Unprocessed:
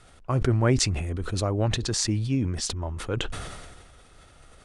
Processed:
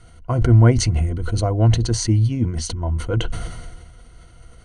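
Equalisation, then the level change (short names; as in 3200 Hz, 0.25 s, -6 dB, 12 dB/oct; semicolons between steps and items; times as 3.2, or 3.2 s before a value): ripple EQ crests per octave 1.9, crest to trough 11 dB; dynamic EQ 700 Hz, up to +5 dB, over -39 dBFS, Q 1.4; low shelf 210 Hz +11 dB; -1.0 dB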